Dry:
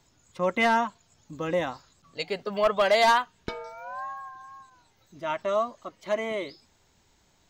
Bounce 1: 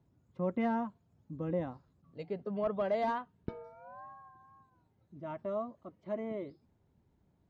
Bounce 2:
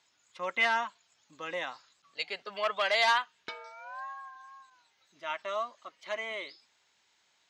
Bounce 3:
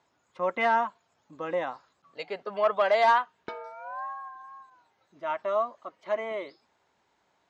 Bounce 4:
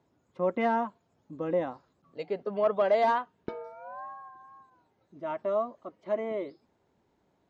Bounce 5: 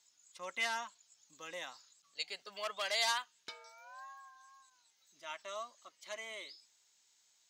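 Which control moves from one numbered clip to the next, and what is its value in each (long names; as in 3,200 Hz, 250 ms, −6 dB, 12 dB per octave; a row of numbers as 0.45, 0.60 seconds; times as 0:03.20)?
resonant band-pass, frequency: 140, 2,700, 950, 370, 7,900 Hertz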